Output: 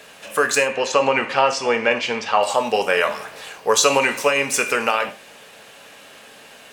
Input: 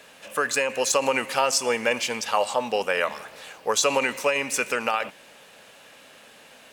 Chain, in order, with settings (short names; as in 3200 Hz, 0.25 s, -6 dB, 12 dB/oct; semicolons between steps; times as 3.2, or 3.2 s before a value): 0.68–2.43 LPF 3500 Hz 12 dB/oct; non-linear reverb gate 0.13 s falling, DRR 6.5 dB; gain +5 dB